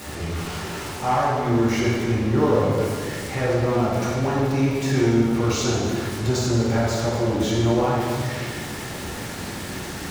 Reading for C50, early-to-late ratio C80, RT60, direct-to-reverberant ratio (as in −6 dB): −1.5 dB, 0.5 dB, 2.0 s, −8.0 dB